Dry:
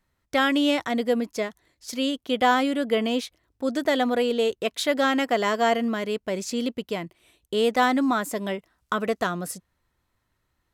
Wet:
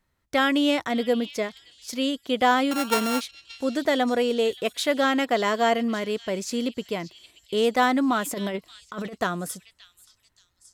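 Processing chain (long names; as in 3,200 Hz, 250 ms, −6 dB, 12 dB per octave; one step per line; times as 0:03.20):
0:02.71–0:03.21: samples sorted by size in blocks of 32 samples
echo through a band-pass that steps 577 ms, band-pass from 3,700 Hz, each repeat 0.7 octaves, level −11 dB
0:08.25–0:09.18: compressor whose output falls as the input rises −29 dBFS, ratio −0.5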